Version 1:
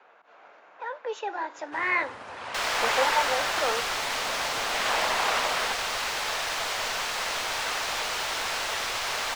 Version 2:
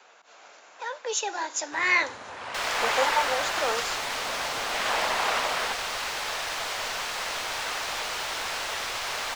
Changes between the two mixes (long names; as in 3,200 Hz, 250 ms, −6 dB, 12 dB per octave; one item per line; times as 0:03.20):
speech: remove low-pass filter 1,900 Hz 12 dB per octave
second sound: send −7.5 dB